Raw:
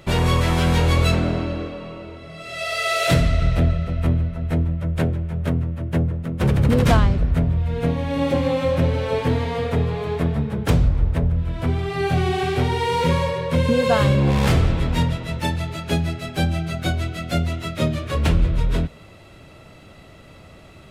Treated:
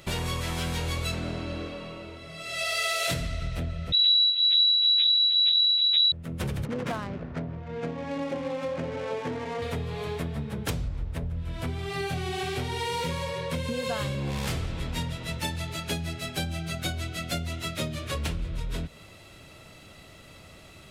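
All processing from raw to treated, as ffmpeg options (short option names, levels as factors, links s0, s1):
-filter_complex "[0:a]asettb=1/sr,asplit=3[s0][s1][s2];[s0]atrim=end=3.924[s3];[s1]atrim=start=3.92:end=6.12,asetpts=PTS-STARTPTS,afade=t=in:d=0.004:c=qsin,afade=t=out:st=2.196:d=0.004:c=qsin,acrossover=split=2600[s4][s5];[s5]acompressor=threshold=0.00178:ratio=4:attack=1:release=60[s6];[s4][s6]amix=inputs=2:normalize=0,equalizer=f=85:t=o:w=0.42:g=12,lowpass=f=3400:t=q:w=0.5098,lowpass=f=3400:t=q:w=0.6013,lowpass=f=3400:t=q:w=0.9,lowpass=f=3400:t=q:w=2.563,afreqshift=-4000[s7];[s2]atrim=start=6.116[s8];[s3][s7]acrossfade=d=0.004:c1=hsin:c2=qsin[s9];[s9][s8]acrossfade=d=0.004:c1=qsin:c2=hsin,asettb=1/sr,asplit=3[s10][s11][s12];[s10]atrim=end=6.654[s13];[s11]atrim=start=6.65:end=9.62,asetpts=PTS-STARTPTS,afade=t=in:d=0.004:c=qsin,afade=t=out:st=2.966:d=0.004:c=qsin,highpass=190,lowpass=2300,adynamicsmooth=sensitivity=6.5:basefreq=1500[s14];[s12]atrim=start=9.616[s15];[s13][s14]acrossfade=d=0.004:c1=hsin:c2=qsin[s16];[s16][s15]acrossfade=d=0.004:c1=qsin:c2=hsin,acompressor=threshold=0.0708:ratio=4,highshelf=f=2600:g=10.5,volume=0.501"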